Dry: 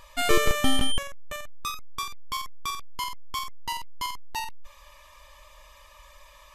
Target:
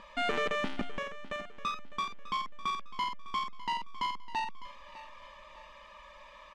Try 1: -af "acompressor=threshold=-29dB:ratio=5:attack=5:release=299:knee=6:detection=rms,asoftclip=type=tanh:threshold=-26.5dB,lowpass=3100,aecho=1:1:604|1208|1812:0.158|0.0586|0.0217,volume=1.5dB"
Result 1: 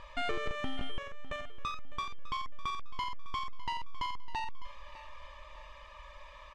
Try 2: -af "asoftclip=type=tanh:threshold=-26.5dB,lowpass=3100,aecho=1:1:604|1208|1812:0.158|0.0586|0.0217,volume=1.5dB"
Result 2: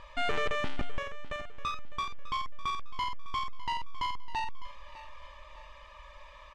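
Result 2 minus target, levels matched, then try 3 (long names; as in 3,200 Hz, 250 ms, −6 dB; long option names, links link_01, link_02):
125 Hz band +6.0 dB
-af "asoftclip=type=tanh:threshold=-26.5dB,lowpass=3100,lowshelf=frequency=150:width_type=q:width=3:gain=-9,aecho=1:1:604|1208|1812:0.158|0.0586|0.0217,volume=1.5dB"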